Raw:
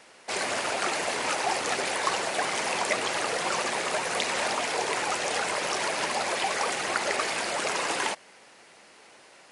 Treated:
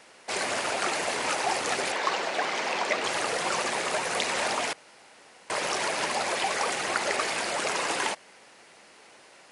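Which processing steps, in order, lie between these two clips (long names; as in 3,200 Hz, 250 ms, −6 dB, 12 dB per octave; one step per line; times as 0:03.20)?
0:01.92–0:03.04: band-pass filter 190–5,400 Hz
0:04.73–0:05.50: fill with room tone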